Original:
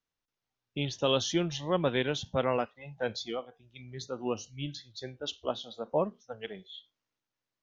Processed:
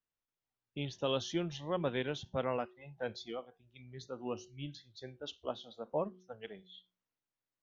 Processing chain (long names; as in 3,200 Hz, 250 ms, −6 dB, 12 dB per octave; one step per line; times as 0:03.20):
high-shelf EQ 5,300 Hz −8.5 dB
hum removal 183.8 Hz, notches 2
level −6 dB